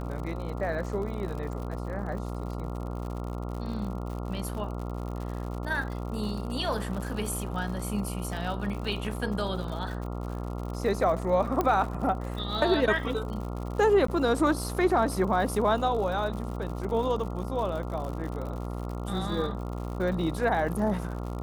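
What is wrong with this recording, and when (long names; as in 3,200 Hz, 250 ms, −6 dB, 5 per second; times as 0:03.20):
mains buzz 60 Hz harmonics 23 −34 dBFS
surface crackle 97 per second −36 dBFS
0:11.61: click −14 dBFS
0:14.07–0:14.08: drop-out 14 ms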